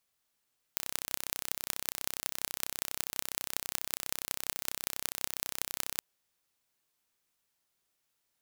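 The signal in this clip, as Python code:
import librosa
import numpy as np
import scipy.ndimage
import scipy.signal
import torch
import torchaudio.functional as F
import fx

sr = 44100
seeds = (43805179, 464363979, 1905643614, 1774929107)

y = fx.impulse_train(sr, length_s=5.22, per_s=32.2, accent_every=6, level_db=-2.5)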